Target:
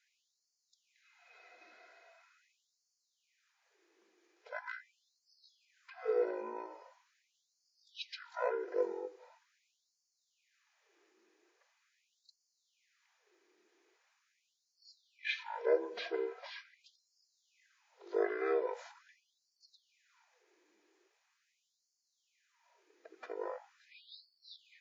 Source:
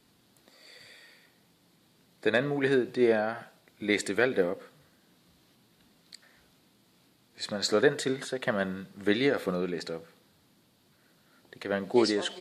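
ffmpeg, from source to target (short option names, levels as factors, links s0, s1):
-af "afftfilt=real='real(if(lt(b,1008),b+24*(1-2*mod(floor(b/24),2)),b),0)':imag='imag(if(lt(b,1008),b+24*(1-2*mod(floor(b/24),2)),b),0)':win_size=2048:overlap=0.75,asetrate=22050,aresample=44100,afftfilt=real='re*gte(b*sr/1024,210*pow(4300/210,0.5+0.5*sin(2*PI*0.42*pts/sr)))':imag='im*gte(b*sr/1024,210*pow(4300/210,0.5+0.5*sin(2*PI*0.42*pts/sr)))':win_size=1024:overlap=0.75,volume=0.398"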